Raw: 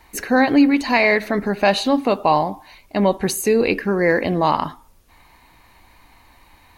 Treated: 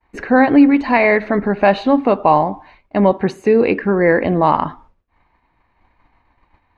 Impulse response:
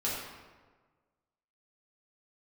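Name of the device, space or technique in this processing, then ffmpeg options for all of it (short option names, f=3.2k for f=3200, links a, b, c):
hearing-loss simulation: -filter_complex "[0:a]asettb=1/sr,asplit=3[a][b][c];[a]atrim=end=3.114[d];[b]atrim=start=3.11:end=3.82,asetpts=PTS-STARTPTS,afade=t=in:d=0.004:c=qsin,afade=t=out:st=0.706:d=0.004:c=qsin,highpass=90[e];[c]atrim=start=3.816[f];[d][e]acrossfade=d=0.004:c1=hsin:c2=qsin[g];[g][f]acrossfade=d=0.004:c1=qsin:c2=hsin,lowpass=2k,agate=range=-33dB:threshold=-42dB:ratio=3:detection=peak,volume=4dB"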